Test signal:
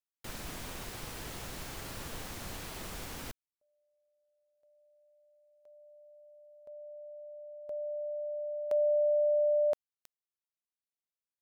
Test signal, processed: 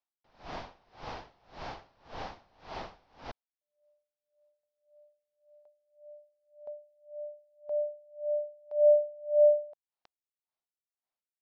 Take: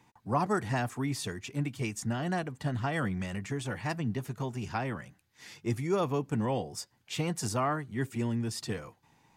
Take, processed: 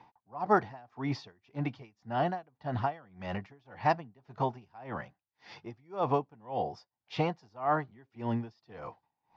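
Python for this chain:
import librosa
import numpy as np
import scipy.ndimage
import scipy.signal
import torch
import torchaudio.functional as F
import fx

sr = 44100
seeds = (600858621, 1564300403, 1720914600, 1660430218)

y = scipy.signal.sosfilt(scipy.signal.butter(8, 5400.0, 'lowpass', fs=sr, output='sos'), x)
y = fx.peak_eq(y, sr, hz=780.0, db=13.0, octaves=1.2)
y = y * 10.0 ** (-30 * (0.5 - 0.5 * np.cos(2.0 * np.pi * 1.8 * np.arange(len(y)) / sr)) / 20.0)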